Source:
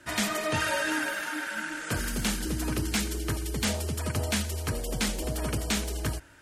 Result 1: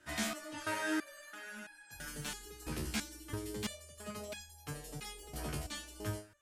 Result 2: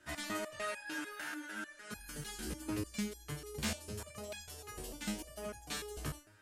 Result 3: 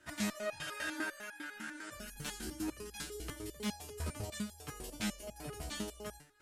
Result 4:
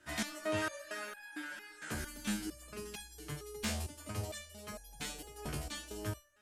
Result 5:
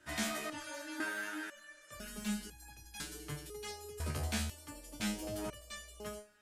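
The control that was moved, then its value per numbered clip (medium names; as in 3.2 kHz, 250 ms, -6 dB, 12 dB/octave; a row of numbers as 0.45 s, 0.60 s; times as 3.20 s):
resonator arpeggio, rate: 3 Hz, 6.7 Hz, 10 Hz, 4.4 Hz, 2 Hz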